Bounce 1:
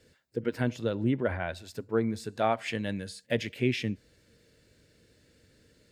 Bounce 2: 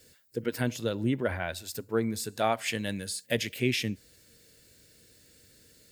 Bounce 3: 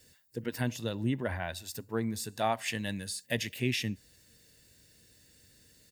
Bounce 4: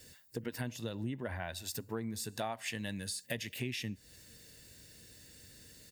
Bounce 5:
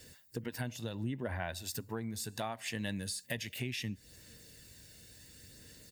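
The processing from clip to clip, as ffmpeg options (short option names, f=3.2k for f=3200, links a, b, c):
-af "aemphasis=mode=production:type=75fm"
-af "aecho=1:1:1.1:0.34,volume=-3dB"
-af "acompressor=threshold=-42dB:ratio=4,volume=5dB"
-af "aphaser=in_gain=1:out_gain=1:delay=1.4:decay=0.24:speed=0.7:type=sinusoidal"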